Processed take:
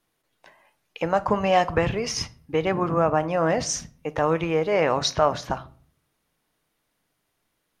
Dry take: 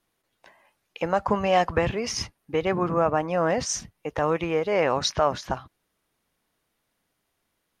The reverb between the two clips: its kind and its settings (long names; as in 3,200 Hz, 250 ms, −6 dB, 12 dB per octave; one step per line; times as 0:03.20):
rectangular room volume 480 cubic metres, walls furnished, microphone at 0.45 metres
level +1 dB